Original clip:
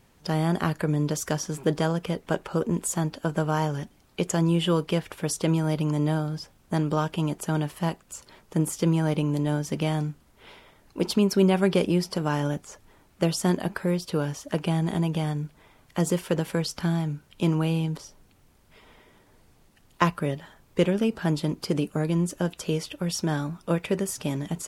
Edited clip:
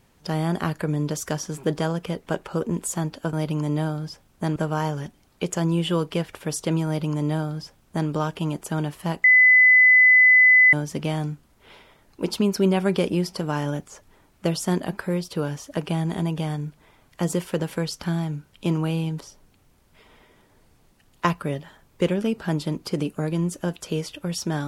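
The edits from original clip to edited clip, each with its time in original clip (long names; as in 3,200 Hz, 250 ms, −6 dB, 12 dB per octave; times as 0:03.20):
0:05.63–0:06.86: duplicate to 0:03.33
0:08.01–0:09.50: beep over 2,010 Hz −10.5 dBFS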